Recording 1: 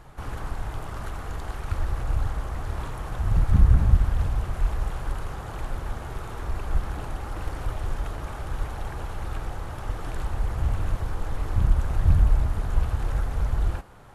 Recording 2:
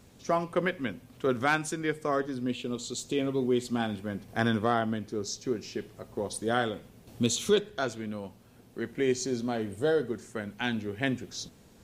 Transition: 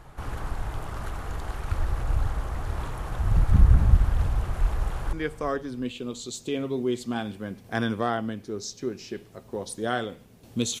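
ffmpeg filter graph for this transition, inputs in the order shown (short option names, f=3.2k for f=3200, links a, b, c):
-filter_complex "[0:a]apad=whole_dur=10.8,atrim=end=10.8,atrim=end=5.132[a];[1:a]atrim=start=1.768:end=7.44[b];[a][b]acrossfade=d=0.004:c1=hsin:c2=hsin,asplit=2[c][d];[d]afade=t=in:st=4.77:d=0.01,afade=t=out:st=5.13:d=0.01,aecho=0:1:360|720|1080:0.199526|0.0598579|0.0179574[e];[c][e]amix=inputs=2:normalize=0"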